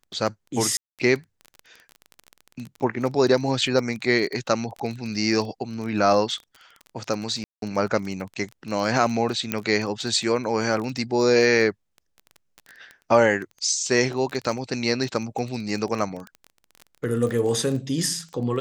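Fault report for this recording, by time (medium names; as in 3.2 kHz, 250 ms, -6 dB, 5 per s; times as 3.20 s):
crackle 19 per s -29 dBFS
0.77–0.99 s: dropout 217 ms
7.44–7.62 s: dropout 182 ms
9.52 s: pop -7 dBFS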